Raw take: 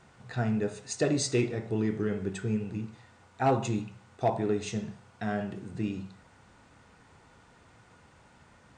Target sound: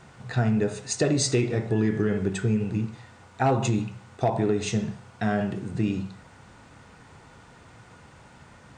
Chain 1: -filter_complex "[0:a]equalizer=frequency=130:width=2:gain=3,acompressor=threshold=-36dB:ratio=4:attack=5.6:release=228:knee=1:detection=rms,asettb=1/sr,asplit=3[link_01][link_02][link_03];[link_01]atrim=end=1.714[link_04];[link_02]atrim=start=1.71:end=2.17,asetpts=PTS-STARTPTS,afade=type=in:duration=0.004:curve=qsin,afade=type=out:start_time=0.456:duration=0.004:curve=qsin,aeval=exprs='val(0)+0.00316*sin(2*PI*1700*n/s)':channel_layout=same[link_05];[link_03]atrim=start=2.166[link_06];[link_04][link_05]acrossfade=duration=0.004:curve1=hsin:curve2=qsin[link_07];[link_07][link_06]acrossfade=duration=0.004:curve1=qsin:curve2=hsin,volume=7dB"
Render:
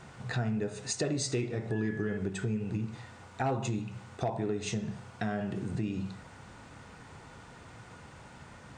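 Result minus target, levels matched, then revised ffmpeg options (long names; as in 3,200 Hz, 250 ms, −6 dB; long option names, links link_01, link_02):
downward compressor: peak gain reduction +8.5 dB
-filter_complex "[0:a]equalizer=frequency=130:width=2:gain=3,acompressor=threshold=-24.5dB:ratio=4:attack=5.6:release=228:knee=1:detection=rms,asettb=1/sr,asplit=3[link_01][link_02][link_03];[link_01]atrim=end=1.714[link_04];[link_02]atrim=start=1.71:end=2.17,asetpts=PTS-STARTPTS,afade=type=in:duration=0.004:curve=qsin,afade=type=out:start_time=0.456:duration=0.004:curve=qsin,aeval=exprs='val(0)+0.00316*sin(2*PI*1700*n/s)':channel_layout=same[link_05];[link_03]atrim=start=2.166[link_06];[link_04][link_05]acrossfade=duration=0.004:curve1=hsin:curve2=qsin[link_07];[link_07][link_06]acrossfade=duration=0.004:curve1=qsin:curve2=hsin,volume=7dB"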